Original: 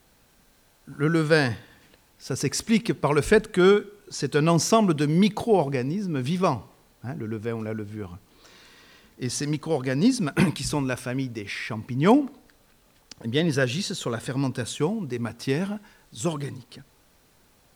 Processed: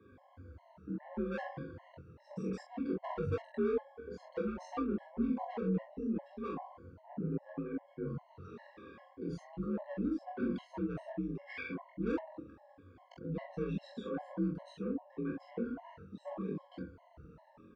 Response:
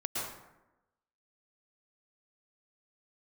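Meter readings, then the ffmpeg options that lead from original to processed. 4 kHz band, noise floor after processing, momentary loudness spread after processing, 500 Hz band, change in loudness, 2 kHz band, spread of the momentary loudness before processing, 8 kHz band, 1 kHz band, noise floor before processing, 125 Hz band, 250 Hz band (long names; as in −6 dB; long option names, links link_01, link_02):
below −25 dB, −64 dBFS, 18 LU, −15.0 dB, −15.0 dB, −19.5 dB, 14 LU, below −35 dB, −16.0 dB, −60 dBFS, −16.0 dB, −12.5 dB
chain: -filter_complex "[0:a]afftfilt=real='re*pow(10,14/40*sin(2*PI*(1.8*log(max(b,1)*sr/1024/100)/log(2)-(-0.79)*(pts-256)/sr)))':imag='im*pow(10,14/40*sin(2*PI*(1.8*log(max(b,1)*sr/1024/100)/log(2)-(-0.79)*(pts-256)/sr)))':win_size=1024:overlap=0.75,lowpass=1000,asoftclip=type=tanh:threshold=-19dB,areverse,acompressor=threshold=-33dB:ratio=16,areverse,alimiter=level_in=11.5dB:limit=-24dB:level=0:latency=1:release=36,volume=-11.5dB,asplit=2[link_01][link_02];[link_02]aecho=0:1:22|44:0.299|0.668[link_03];[link_01][link_03]amix=inputs=2:normalize=0,afreqshift=49,flanger=delay=19:depth=7.1:speed=0.61,lowshelf=frequency=110:gain=2,afftfilt=real='re*gt(sin(2*PI*2.5*pts/sr)*(1-2*mod(floor(b*sr/1024/550),2)),0)':imag='im*gt(sin(2*PI*2.5*pts/sr)*(1-2*mod(floor(b*sr/1024/550),2)),0)':win_size=1024:overlap=0.75,volume=6.5dB"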